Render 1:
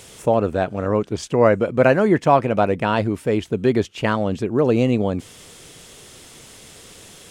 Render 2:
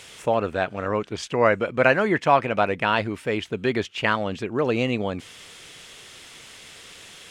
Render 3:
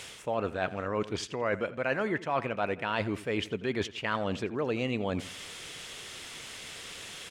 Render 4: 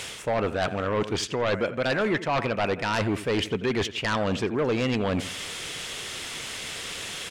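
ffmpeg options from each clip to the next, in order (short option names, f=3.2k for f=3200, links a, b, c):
-af "equalizer=f=2.3k:w=0.43:g=12,volume=-8dB"
-filter_complex "[0:a]areverse,acompressor=threshold=-29dB:ratio=5,areverse,asplit=2[a][b];[b]adelay=85,lowpass=f=4.1k:p=1,volume=-16.5dB,asplit=2[c][d];[d]adelay=85,lowpass=f=4.1k:p=1,volume=0.39,asplit=2[e][f];[f]adelay=85,lowpass=f=4.1k:p=1,volume=0.39[g];[a][c][e][g]amix=inputs=4:normalize=0,volume=1dB"
-af "aeval=exprs='0.2*sin(PI/2*3.16*val(0)/0.2)':c=same,volume=-5.5dB"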